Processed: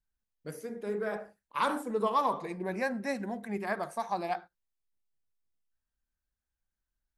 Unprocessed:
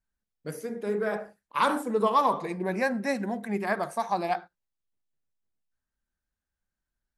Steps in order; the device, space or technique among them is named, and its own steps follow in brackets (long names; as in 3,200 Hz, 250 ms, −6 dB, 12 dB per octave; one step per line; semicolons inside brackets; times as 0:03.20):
low shelf boost with a cut just above (low-shelf EQ 110 Hz +6 dB; parametric band 160 Hz −2.5 dB 1.2 octaves)
level −5 dB